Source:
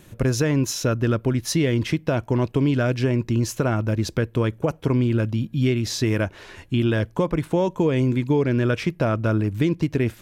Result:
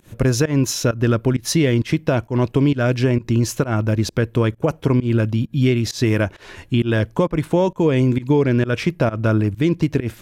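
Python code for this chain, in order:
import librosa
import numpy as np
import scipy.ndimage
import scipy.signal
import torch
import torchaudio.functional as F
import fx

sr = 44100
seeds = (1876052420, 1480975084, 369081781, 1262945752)

y = fx.volume_shaper(x, sr, bpm=132, per_beat=1, depth_db=-23, release_ms=137.0, shape='fast start')
y = y * 10.0 ** (4.0 / 20.0)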